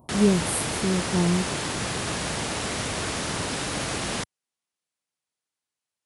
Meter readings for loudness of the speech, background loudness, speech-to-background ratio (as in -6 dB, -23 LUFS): -25.5 LUFS, -28.0 LUFS, 2.5 dB